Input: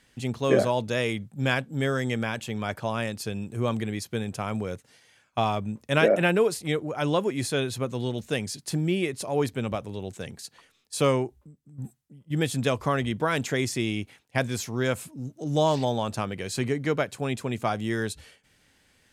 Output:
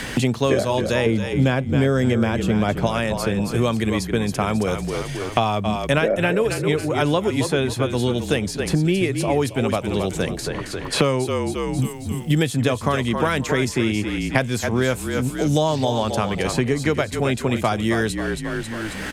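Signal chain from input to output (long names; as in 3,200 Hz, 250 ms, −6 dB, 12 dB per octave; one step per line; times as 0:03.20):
0:01.06–0:02.87: tilt shelving filter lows +9 dB, about 1,300 Hz
echo with shifted repeats 269 ms, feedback 34%, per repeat −38 Hz, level −9.5 dB
multiband upward and downward compressor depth 100%
level +4.5 dB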